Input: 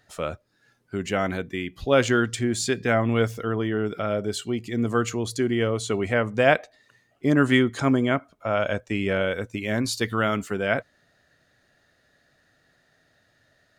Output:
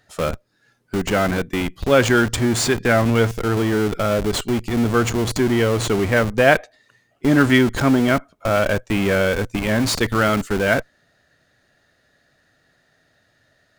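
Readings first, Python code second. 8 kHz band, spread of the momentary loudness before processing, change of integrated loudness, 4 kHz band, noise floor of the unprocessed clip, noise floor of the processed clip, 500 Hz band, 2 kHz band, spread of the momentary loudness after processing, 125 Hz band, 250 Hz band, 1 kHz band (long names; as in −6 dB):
+6.5 dB, 9 LU, +5.5 dB, +6.0 dB, −66 dBFS, −63 dBFS, +5.0 dB, +6.0 dB, 7 LU, +6.5 dB, +5.5 dB, +5.5 dB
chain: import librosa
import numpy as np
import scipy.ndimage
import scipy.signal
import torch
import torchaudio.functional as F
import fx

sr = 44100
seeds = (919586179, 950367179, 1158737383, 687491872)

p1 = fx.dynamic_eq(x, sr, hz=1600.0, q=3.9, threshold_db=-39.0, ratio=4.0, max_db=3)
p2 = fx.schmitt(p1, sr, flips_db=-30.0)
p3 = p1 + (p2 * 10.0 ** (-3.0 / 20.0))
y = p3 * 10.0 ** (2.5 / 20.0)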